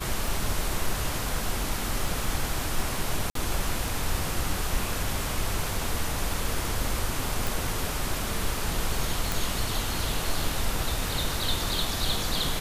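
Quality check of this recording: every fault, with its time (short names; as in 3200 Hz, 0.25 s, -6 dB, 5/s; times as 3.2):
tick 33 1/3 rpm
3.3–3.35 gap 53 ms
7.47 pop
9.32 pop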